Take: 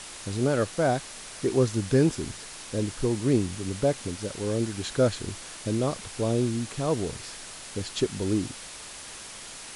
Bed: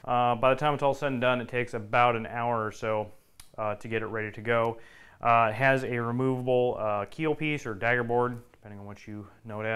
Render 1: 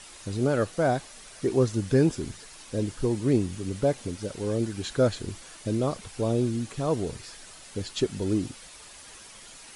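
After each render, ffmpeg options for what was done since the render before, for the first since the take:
ffmpeg -i in.wav -af "afftdn=noise_reduction=8:noise_floor=-42" out.wav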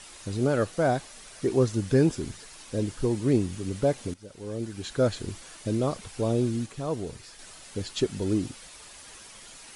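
ffmpeg -i in.wav -filter_complex "[0:a]asplit=4[link_01][link_02][link_03][link_04];[link_01]atrim=end=4.14,asetpts=PTS-STARTPTS,afade=type=out:start_time=4.136:duration=0.004:curve=hsin:silence=0.158489[link_05];[link_02]atrim=start=4.14:end=6.662,asetpts=PTS-STARTPTS,afade=type=in:duration=1.06:silence=0.158489[link_06];[link_03]atrim=start=6.658:end=7.392,asetpts=PTS-STARTPTS,volume=-4dB[link_07];[link_04]atrim=start=7.388[link_08];[link_05][link_06]concat=n=2:v=0:a=1[link_09];[link_09][link_07]acrossfade=duration=0.004:curve1=hsin:curve2=hsin[link_10];[link_10][link_08]acrossfade=duration=0.004:curve1=hsin:curve2=hsin" out.wav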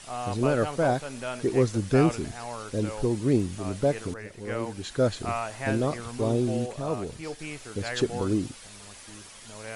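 ffmpeg -i in.wav -i bed.wav -filter_complex "[1:a]volume=-9dB[link_01];[0:a][link_01]amix=inputs=2:normalize=0" out.wav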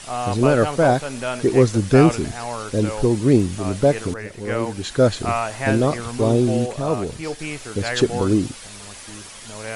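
ffmpeg -i in.wav -af "volume=8dB" out.wav

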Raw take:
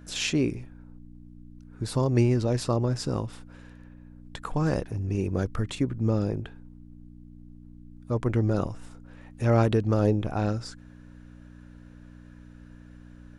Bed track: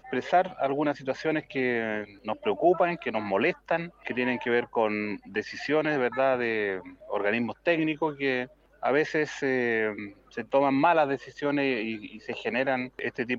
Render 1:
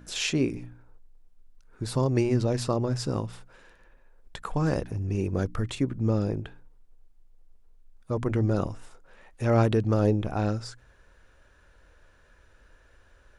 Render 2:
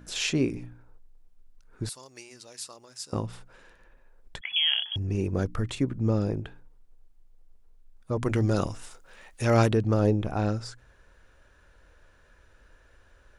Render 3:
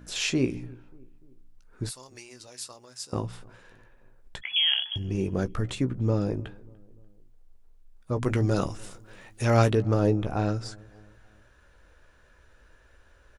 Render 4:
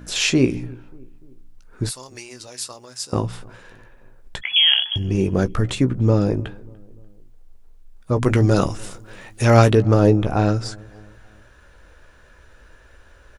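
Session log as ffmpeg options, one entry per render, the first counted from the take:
ffmpeg -i in.wav -af "bandreject=frequency=60:width_type=h:width=4,bandreject=frequency=120:width_type=h:width=4,bandreject=frequency=180:width_type=h:width=4,bandreject=frequency=240:width_type=h:width=4,bandreject=frequency=300:width_type=h:width=4" out.wav
ffmpeg -i in.wav -filter_complex "[0:a]asettb=1/sr,asplit=3[link_01][link_02][link_03];[link_01]atrim=end=1.894[link_04];[link_02]atrim=start=1.89:end=3.13,asetpts=PTS-STARTPTS,afade=type=in:duration=0.004:curve=qsin,afade=type=out:start_time=1.236:duration=0.004:curve=qsin,aderivative[link_05];[link_03]atrim=start=3.126[link_06];[link_04][link_05]acrossfade=duration=0.004:curve1=hsin:curve2=qsin[link_07];[link_07][link_06]acrossfade=duration=0.004:curve1=qsin:curve2=hsin,asettb=1/sr,asplit=3[link_08][link_09][link_10];[link_08]atrim=end=4.414[link_11];[link_09]atrim=start=4.41:end=4.96,asetpts=PTS-STARTPTS,afade=type=in:duration=0.004:curve=qsin,afade=type=out:start_time=0.546:duration=0.004:curve=qsin,lowpass=frequency=2900:width_type=q:width=0.5098,lowpass=frequency=2900:width_type=q:width=0.6013,lowpass=frequency=2900:width_type=q:width=0.9,lowpass=frequency=2900:width_type=q:width=2.563,afreqshift=-3400[link_12];[link_10]atrim=start=4.956[link_13];[link_11][link_12]acrossfade=duration=0.004:curve1=hsin:curve2=qsin[link_14];[link_14][link_13]acrossfade=duration=0.004:curve1=qsin:curve2=hsin,asplit=3[link_15][link_16][link_17];[link_15]afade=type=out:start_time=8.22:duration=0.02[link_18];[link_16]highshelf=frequency=2100:gain=11,afade=type=in:start_time=8.22:duration=0.02,afade=type=out:start_time=9.7:duration=0.02[link_19];[link_17]afade=type=in:start_time=9.7:duration=0.02[link_20];[link_18][link_19][link_20]amix=inputs=3:normalize=0" out.wav
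ffmpeg -i in.wav -filter_complex "[0:a]asplit=2[link_01][link_02];[link_02]adelay=16,volume=-10dB[link_03];[link_01][link_03]amix=inputs=2:normalize=0,asplit=2[link_04][link_05];[link_05]adelay=294,lowpass=frequency=1300:poles=1,volume=-24dB,asplit=2[link_06][link_07];[link_07]adelay=294,lowpass=frequency=1300:poles=1,volume=0.54,asplit=2[link_08][link_09];[link_09]adelay=294,lowpass=frequency=1300:poles=1,volume=0.54[link_10];[link_04][link_06][link_08][link_10]amix=inputs=4:normalize=0" out.wav
ffmpeg -i in.wav -af "volume=8.5dB,alimiter=limit=-1dB:level=0:latency=1" out.wav

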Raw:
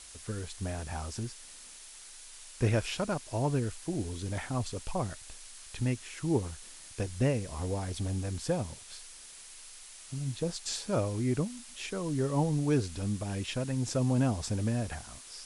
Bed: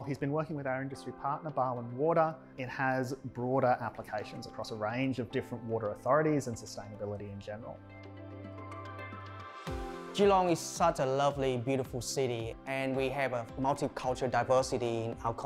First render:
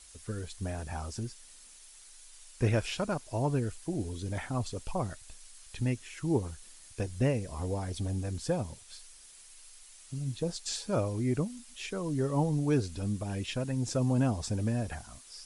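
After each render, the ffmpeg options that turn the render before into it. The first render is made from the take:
ffmpeg -i in.wav -af "afftdn=noise_reduction=7:noise_floor=-50" out.wav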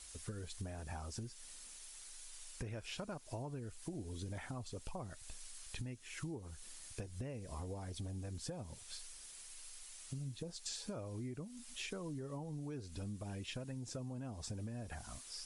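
ffmpeg -i in.wav -af "alimiter=level_in=0.5dB:limit=-24dB:level=0:latency=1:release=383,volume=-0.5dB,acompressor=threshold=-41dB:ratio=10" out.wav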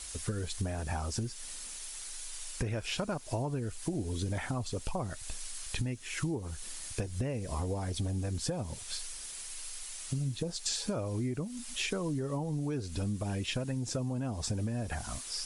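ffmpeg -i in.wav -af "volume=10.5dB" out.wav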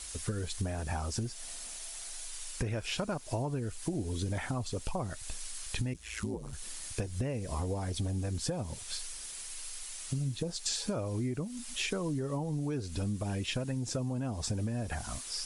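ffmpeg -i in.wav -filter_complex "[0:a]asettb=1/sr,asplit=3[link_01][link_02][link_03];[link_01]atrim=end=1.254[link_04];[link_02]atrim=start=1.25:end=2.26,asetpts=PTS-STARTPTS,afade=type=in:duration=0.004:curve=qsin,afade=type=out:start_time=1.006:duration=0.004:curve=qsin,equalizer=frequency=680:width_type=o:width=0.31:gain=10[link_05];[link_03]atrim=start=2.256[link_06];[link_04][link_05]acrossfade=duration=0.004:curve1=hsin:curve2=qsin[link_07];[link_07][link_06]acrossfade=duration=0.004:curve1=qsin:curve2=hsin,asplit=3[link_08][link_09][link_10];[link_08]afade=type=out:start_time=5.93:duration=0.02[link_11];[link_09]aeval=exprs='val(0)*sin(2*PI*55*n/s)':channel_layout=same,afade=type=in:start_time=5.93:duration=0.02,afade=type=out:start_time=6.52:duration=0.02[link_12];[link_10]afade=type=in:start_time=6.52:duration=0.02[link_13];[link_11][link_12][link_13]amix=inputs=3:normalize=0" out.wav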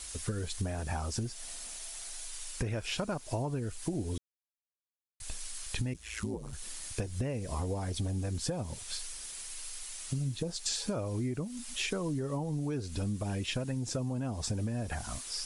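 ffmpeg -i in.wav -filter_complex "[0:a]asplit=3[link_01][link_02][link_03];[link_01]atrim=end=4.18,asetpts=PTS-STARTPTS,afade=type=out:start_time=4.176:duration=0.004:curve=hsin[link_04];[link_02]atrim=start=4.18:end=5.2,asetpts=PTS-STARTPTS,volume=0[link_05];[link_03]atrim=start=5.2,asetpts=PTS-STARTPTS,afade=type=in:duration=0.004:curve=hsin[link_06];[link_04][link_05][link_06]concat=n=3:v=0:a=1" out.wav

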